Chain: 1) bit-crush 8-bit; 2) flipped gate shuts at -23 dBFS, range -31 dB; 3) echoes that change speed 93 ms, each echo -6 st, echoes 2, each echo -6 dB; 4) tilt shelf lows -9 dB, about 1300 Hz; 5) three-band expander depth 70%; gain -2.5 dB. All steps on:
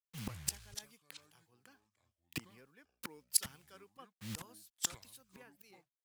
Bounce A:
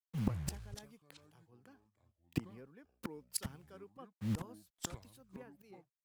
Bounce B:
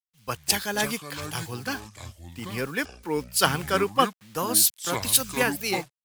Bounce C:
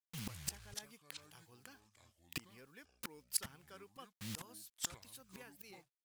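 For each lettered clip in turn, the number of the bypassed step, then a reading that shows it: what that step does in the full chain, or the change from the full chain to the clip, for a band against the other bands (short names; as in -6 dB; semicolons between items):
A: 4, 8 kHz band -12.5 dB; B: 2, momentary loudness spread change -10 LU; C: 5, 8 kHz band -3.5 dB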